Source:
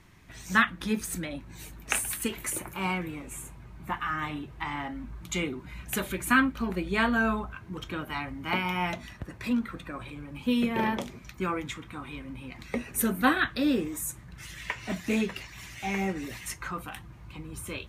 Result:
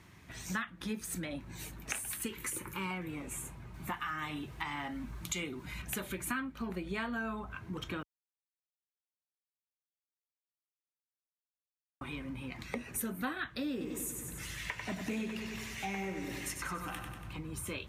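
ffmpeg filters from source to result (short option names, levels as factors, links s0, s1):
-filter_complex "[0:a]asettb=1/sr,asplit=3[s0][s1][s2];[s0]atrim=end=2.254[s3];[s1]atrim=start=2.25:end=2.91,asetpts=PTS-STARTPTS,afade=t=in:d=0.004:c=qsin,afade=t=out:st=0.656:d=0.004:c=qsin,asuperstop=centerf=690:order=4:qfactor=2.1[s4];[s2]atrim=start=2.906[s5];[s3][s4]acrossfade=d=0.004:c1=hsin:c2=qsin[s6];[s6][s5]acrossfade=d=0.004:c1=qsin:c2=hsin,asettb=1/sr,asplit=3[s7][s8][s9];[s7]atrim=end=3.744[s10];[s8]atrim=start=3.74:end=5.82,asetpts=PTS-STARTPTS,afade=t=in:d=0.004:c=qsin,afade=t=out:st=2.076:d=0.004:c=qsin,highshelf=f=2800:g=8.5[s11];[s9]atrim=start=5.816[s12];[s10][s11]acrossfade=d=0.004:c1=hsin:c2=qsin[s13];[s13][s12]acrossfade=d=0.004:c1=qsin:c2=hsin,asettb=1/sr,asplit=3[s14][s15][s16];[s14]atrim=end=13.714[s17];[s15]atrim=start=13.71:end=17.39,asetpts=PTS-STARTPTS,afade=t=in:d=0.004:c=qsin,afade=t=out:st=3.676:d=0.004:c=qsin,aecho=1:1:95|190|285|380|475|570|665|760:0.447|0.264|0.155|0.0917|0.0541|0.0319|0.0188|0.0111,atrim=end_sample=162288[s18];[s16]atrim=start=17.386[s19];[s17][s18]acrossfade=d=0.004:c1=hsin:c2=qsin[s20];[s20][s19]acrossfade=d=0.004:c1=qsin:c2=hsin,asplit=3[s21][s22][s23];[s21]atrim=end=8.03,asetpts=PTS-STARTPTS,afade=t=out:st=8.026:d=0.004:c=hsin[s24];[s22]atrim=start=8.03:end=12.01,asetpts=PTS-STARTPTS,volume=0[s25];[s23]atrim=start=12.01,asetpts=PTS-STARTPTS,afade=t=in:d=0.004:c=hsin[s26];[s24][s25][s26]concat=n=3:v=0:a=1,highpass=56,acompressor=threshold=0.0158:ratio=4"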